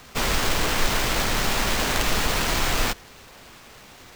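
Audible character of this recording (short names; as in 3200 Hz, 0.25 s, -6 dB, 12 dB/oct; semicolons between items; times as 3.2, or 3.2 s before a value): aliases and images of a low sample rate 11000 Hz, jitter 20%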